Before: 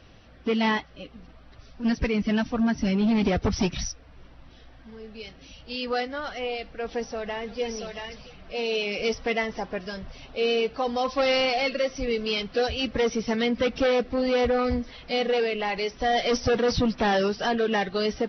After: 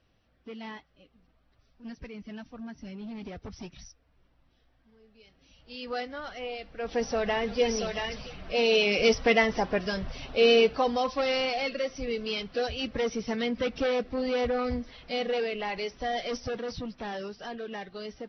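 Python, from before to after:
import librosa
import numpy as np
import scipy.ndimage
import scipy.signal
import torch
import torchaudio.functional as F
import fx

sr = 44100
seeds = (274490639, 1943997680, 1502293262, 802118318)

y = fx.gain(x, sr, db=fx.line((5.2, -17.5), (5.97, -6.0), (6.67, -6.0), (7.1, 4.0), (10.64, 4.0), (11.24, -5.0), (15.83, -5.0), (16.83, -13.5)))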